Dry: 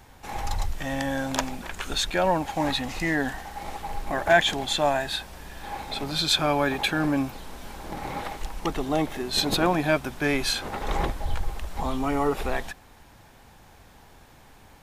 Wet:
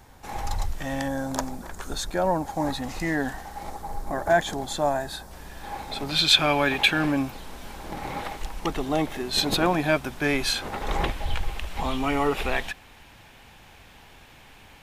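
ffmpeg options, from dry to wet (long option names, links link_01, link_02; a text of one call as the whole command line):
ffmpeg -i in.wav -af "asetnsamples=nb_out_samples=441:pad=0,asendcmd='1.08 equalizer g -14;2.82 equalizer g -5.5;3.7 equalizer g -14;5.31 equalizer g -2.5;6.09 equalizer g 8.5;7.12 equalizer g 1.5;11.04 equalizer g 9.5',equalizer=frequency=2700:width_type=o:width=1.1:gain=-3" out.wav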